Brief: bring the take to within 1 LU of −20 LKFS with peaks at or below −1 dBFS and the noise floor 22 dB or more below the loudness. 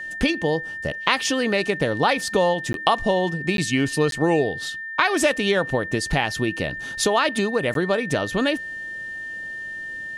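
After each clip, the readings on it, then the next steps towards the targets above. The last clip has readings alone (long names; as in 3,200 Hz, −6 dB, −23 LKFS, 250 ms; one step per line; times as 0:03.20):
number of dropouts 4; longest dropout 12 ms; interfering tone 1,800 Hz; level of the tone −30 dBFS; integrated loudness −22.5 LKFS; sample peak −2.5 dBFS; target loudness −20.0 LKFS
→ repair the gap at 0:02.73/0:03.57/0:04.11/0:07.74, 12 ms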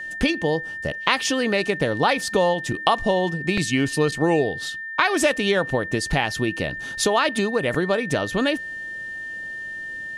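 number of dropouts 0; interfering tone 1,800 Hz; level of the tone −30 dBFS
→ notch filter 1,800 Hz, Q 30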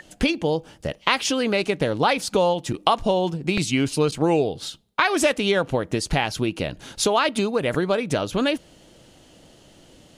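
interfering tone none found; integrated loudness −22.5 LKFS; sample peak −2.0 dBFS; target loudness −20.0 LKFS
→ level +2.5 dB
brickwall limiter −1 dBFS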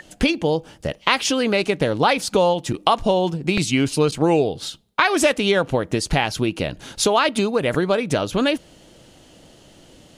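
integrated loudness −20.5 LKFS; sample peak −1.0 dBFS; background noise floor −50 dBFS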